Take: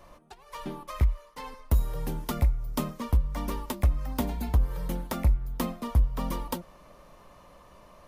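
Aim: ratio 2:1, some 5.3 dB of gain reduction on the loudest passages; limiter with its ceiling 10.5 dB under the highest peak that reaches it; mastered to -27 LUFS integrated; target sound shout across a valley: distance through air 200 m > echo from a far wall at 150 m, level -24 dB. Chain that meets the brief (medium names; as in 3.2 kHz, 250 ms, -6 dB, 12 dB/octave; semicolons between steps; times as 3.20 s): compression 2:1, threshold -27 dBFS; peak limiter -27 dBFS; distance through air 200 m; echo from a far wall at 150 m, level -24 dB; trim +11.5 dB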